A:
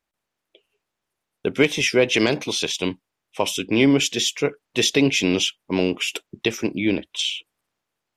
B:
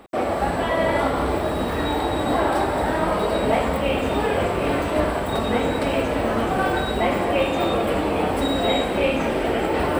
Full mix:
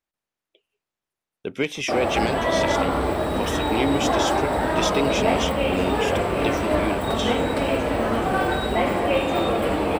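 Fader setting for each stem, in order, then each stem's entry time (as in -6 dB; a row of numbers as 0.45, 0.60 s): -7.0, -0.5 dB; 0.00, 1.75 s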